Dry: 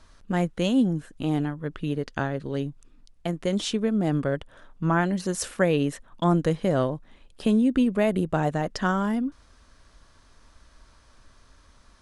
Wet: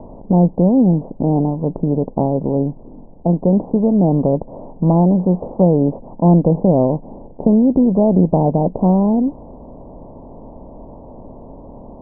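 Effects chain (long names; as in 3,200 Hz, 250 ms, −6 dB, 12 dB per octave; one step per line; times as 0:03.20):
compressor on every frequency bin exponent 0.6
Butterworth low-pass 930 Hz 72 dB per octave
dynamic equaliser 180 Hz, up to +6 dB, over −38 dBFS, Q 4.8
level +6 dB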